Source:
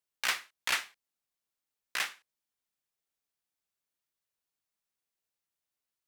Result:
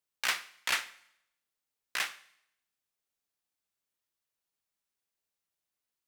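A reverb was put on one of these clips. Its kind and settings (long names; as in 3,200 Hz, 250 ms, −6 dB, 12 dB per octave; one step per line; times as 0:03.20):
four-comb reverb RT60 0.76 s, combs from 32 ms, DRR 17 dB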